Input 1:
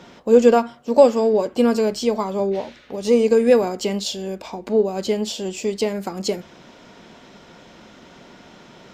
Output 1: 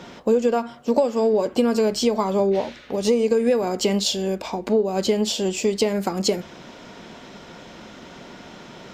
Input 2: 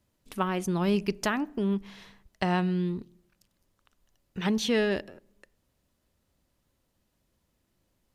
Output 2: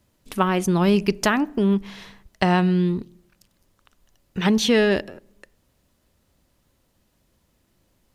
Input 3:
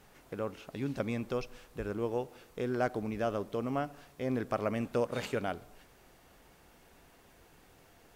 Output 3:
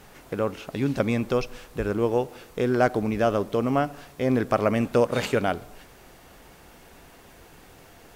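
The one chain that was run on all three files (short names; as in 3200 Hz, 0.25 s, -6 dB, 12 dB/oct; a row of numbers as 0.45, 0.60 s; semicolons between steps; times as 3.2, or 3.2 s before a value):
compressor 16:1, threshold -19 dBFS; normalise peaks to -6 dBFS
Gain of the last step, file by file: +4.0, +8.5, +10.0 dB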